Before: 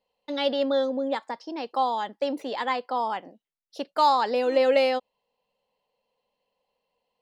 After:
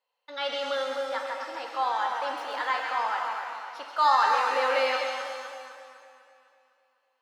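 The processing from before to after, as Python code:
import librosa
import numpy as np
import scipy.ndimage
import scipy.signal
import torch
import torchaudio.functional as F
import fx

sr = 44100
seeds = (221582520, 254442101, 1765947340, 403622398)

p1 = scipy.signal.sosfilt(scipy.signal.bessel(2, 800.0, 'highpass', norm='mag', fs=sr, output='sos'), x)
p2 = fx.peak_eq(p1, sr, hz=1400.0, db=12.0, octaves=0.83)
p3 = fx.transient(p2, sr, attack_db=-3, sustain_db=1)
p4 = p3 + fx.echo_split(p3, sr, split_hz=1700.0, low_ms=252, high_ms=132, feedback_pct=52, wet_db=-6, dry=0)
p5 = fx.rev_shimmer(p4, sr, seeds[0], rt60_s=1.5, semitones=7, shimmer_db=-8, drr_db=4.0)
y = p5 * 10.0 ** (-4.0 / 20.0)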